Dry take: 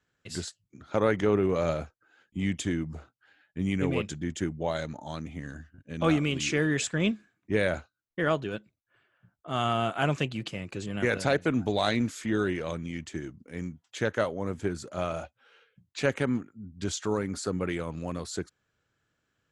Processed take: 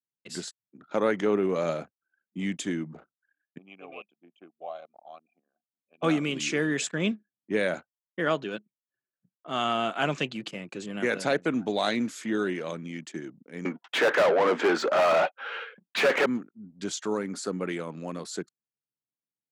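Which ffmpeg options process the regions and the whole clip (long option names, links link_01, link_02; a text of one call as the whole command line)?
ffmpeg -i in.wav -filter_complex "[0:a]asettb=1/sr,asplit=3[link_01][link_02][link_03];[link_01]atrim=end=3.584[link_04];[link_02]atrim=start=3.58:end=6.03,asetpts=PTS-STARTPTS,afade=type=in:duration=0.004:curve=qsin,afade=type=out:start_time=2.446:duration=0.004:curve=qsin,asplit=3[link_05][link_06][link_07];[link_05]bandpass=frequency=730:width_type=q:width=8,volume=0dB[link_08];[link_06]bandpass=frequency=1090:width_type=q:width=8,volume=-6dB[link_09];[link_07]bandpass=frequency=2440:width_type=q:width=8,volume=-9dB[link_10];[link_08][link_09][link_10]amix=inputs=3:normalize=0,equalizer=frequency=2900:width=1.8:gain=4.5[link_11];[link_03]atrim=start=6.026[link_12];[link_04][link_11]acrossfade=duration=0.004:curve1=hsin:curve2=qsin[link_13];[link_13][link_12]acrossfade=duration=0.004:curve1=qsin:curve2=hsin,asettb=1/sr,asplit=3[link_14][link_15][link_16];[link_14]atrim=end=8.264[link_17];[link_15]atrim=start=8.26:end=10.34,asetpts=PTS-STARTPTS,afade=type=in:duration=0.004:curve=qsin,afade=type=out:start_time=2.076:duration=0.004:curve=qsin,lowpass=6200,highshelf=frequency=2700:gain=5.5[link_18];[link_16]atrim=start=10.336[link_19];[link_17][link_18]acrossfade=duration=0.004:curve1=hsin:curve2=qsin[link_20];[link_20][link_19]acrossfade=duration=0.004:curve1=qsin:curve2=hsin,asettb=1/sr,asplit=3[link_21][link_22][link_23];[link_21]atrim=end=13.654[link_24];[link_22]atrim=start=13.65:end=16.26,asetpts=PTS-STARTPTS,afade=type=in:duration=0.004:curve=qsin,afade=type=out:start_time=2.606:duration=0.004:curve=qsin,highpass=380,lowpass=3700,asplit=2[link_25][link_26];[link_26]highpass=frequency=720:poles=1,volume=35dB,asoftclip=type=tanh:threshold=-13dB[link_27];[link_25][link_27]amix=inputs=2:normalize=0,lowpass=frequency=1700:poles=1,volume=-6dB[link_28];[link_23]atrim=start=16.256[link_29];[link_24][link_28]acrossfade=duration=0.004:curve1=hsin:curve2=qsin[link_30];[link_30][link_29]acrossfade=duration=0.004:curve1=qsin:curve2=hsin,anlmdn=0.00398,highpass=frequency=170:width=0.5412,highpass=frequency=170:width=1.3066" out.wav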